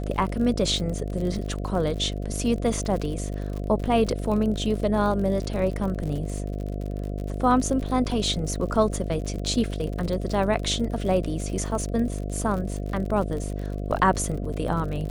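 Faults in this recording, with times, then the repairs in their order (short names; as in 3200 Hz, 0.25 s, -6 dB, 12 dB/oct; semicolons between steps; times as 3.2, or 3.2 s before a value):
buzz 50 Hz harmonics 14 -30 dBFS
crackle 58/s -31 dBFS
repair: de-click; de-hum 50 Hz, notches 14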